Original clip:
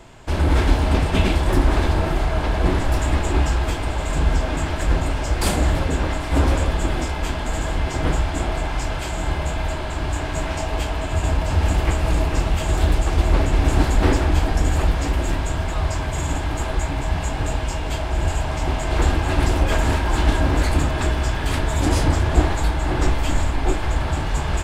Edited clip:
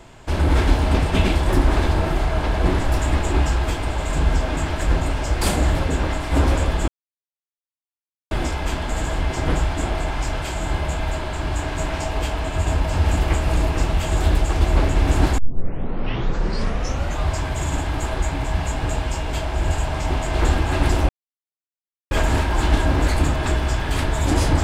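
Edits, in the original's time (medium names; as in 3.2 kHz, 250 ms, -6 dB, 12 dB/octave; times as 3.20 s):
6.88 s: insert silence 1.43 s
13.95 s: tape start 1.88 s
19.66 s: insert silence 1.02 s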